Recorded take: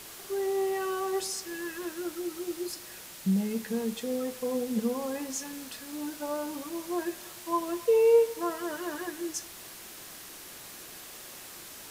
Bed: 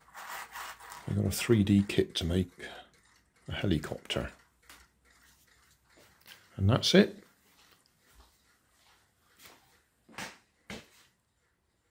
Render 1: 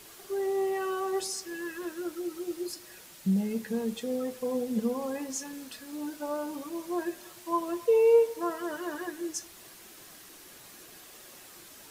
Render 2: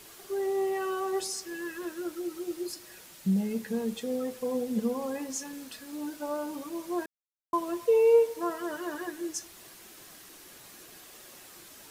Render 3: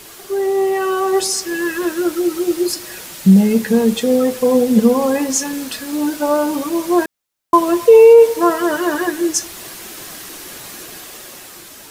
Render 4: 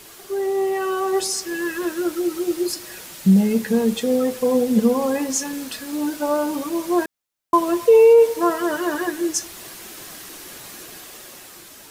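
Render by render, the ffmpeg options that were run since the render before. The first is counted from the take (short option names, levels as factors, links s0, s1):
-af "afftdn=nr=6:nf=-46"
-filter_complex "[0:a]asplit=3[s0][s1][s2];[s0]atrim=end=7.06,asetpts=PTS-STARTPTS,afade=t=out:st=7.056:d=0.004:c=hsin[s3];[s1]atrim=start=7.06:end=7.53,asetpts=PTS-STARTPTS,volume=0[s4];[s2]atrim=start=7.53,asetpts=PTS-STARTPTS,afade=t=in:d=0.004:c=hsin[s5];[s3][s4][s5]concat=n=3:v=0:a=1"
-af "dynaudnorm=f=270:g=9:m=1.88,alimiter=level_in=3.98:limit=0.891:release=50:level=0:latency=1"
-af "volume=0.562"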